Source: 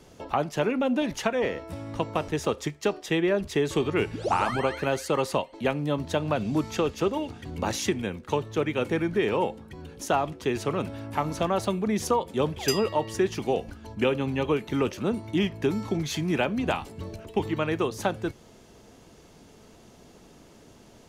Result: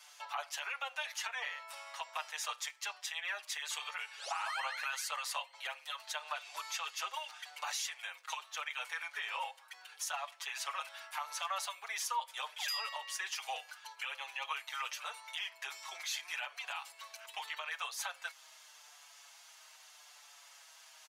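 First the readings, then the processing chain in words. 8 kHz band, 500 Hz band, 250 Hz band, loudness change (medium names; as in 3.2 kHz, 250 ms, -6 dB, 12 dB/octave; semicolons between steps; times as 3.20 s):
-2.5 dB, -27.5 dB, under -40 dB, -12.0 dB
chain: Bessel high-pass 1.4 kHz, order 8; compression 1.5:1, threshold -45 dBFS, peak gain reduction 7.5 dB; peak limiter -31 dBFS, peak gain reduction 9.5 dB; endless flanger 6.2 ms -0.8 Hz; trim +6.5 dB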